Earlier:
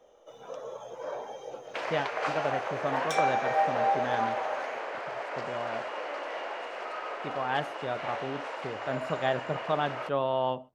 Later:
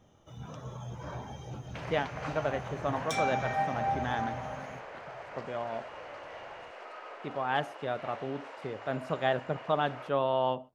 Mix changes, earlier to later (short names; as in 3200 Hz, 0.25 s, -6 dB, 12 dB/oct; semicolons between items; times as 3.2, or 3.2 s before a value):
first sound: remove resonant high-pass 500 Hz, resonance Q 4.4; second sound -8.5 dB